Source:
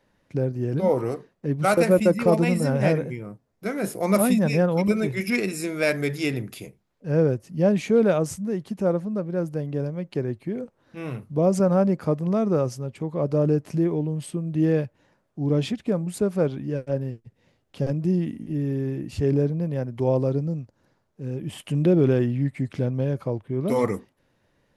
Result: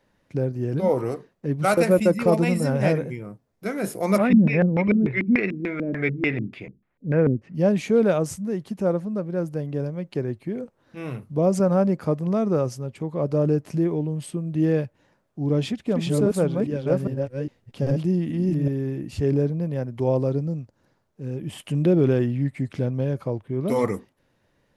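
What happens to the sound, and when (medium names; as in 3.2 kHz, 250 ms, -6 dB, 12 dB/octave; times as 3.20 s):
4.18–7.55 s: LFO low-pass square 3.4 Hz 260–2100 Hz
15.45–18.68 s: chunks repeated in reverse 406 ms, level -1 dB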